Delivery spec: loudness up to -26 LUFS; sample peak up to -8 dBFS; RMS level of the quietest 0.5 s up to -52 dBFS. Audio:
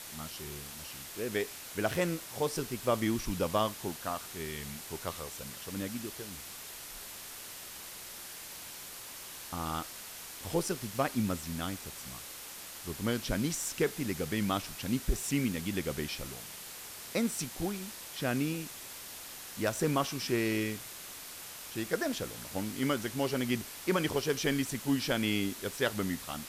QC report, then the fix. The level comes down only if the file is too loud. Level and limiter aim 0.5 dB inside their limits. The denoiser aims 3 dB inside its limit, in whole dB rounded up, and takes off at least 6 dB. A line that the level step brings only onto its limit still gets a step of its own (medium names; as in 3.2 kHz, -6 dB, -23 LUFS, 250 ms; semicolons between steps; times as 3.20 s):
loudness -35.0 LUFS: pass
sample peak -14.5 dBFS: pass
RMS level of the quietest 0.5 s -46 dBFS: fail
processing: noise reduction 9 dB, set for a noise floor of -46 dBFS